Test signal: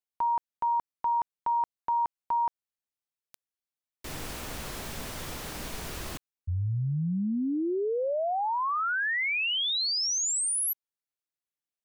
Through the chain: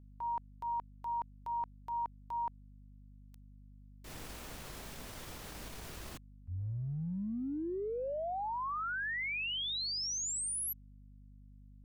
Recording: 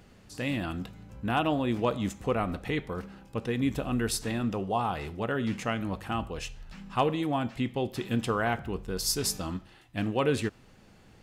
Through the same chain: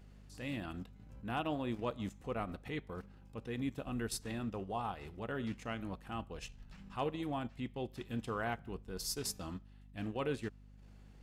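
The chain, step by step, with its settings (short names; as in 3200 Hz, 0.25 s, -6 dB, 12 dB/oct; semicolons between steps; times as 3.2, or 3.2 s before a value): transient shaper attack -5 dB, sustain -9 dB; hum 50 Hz, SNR 16 dB; gain -8.5 dB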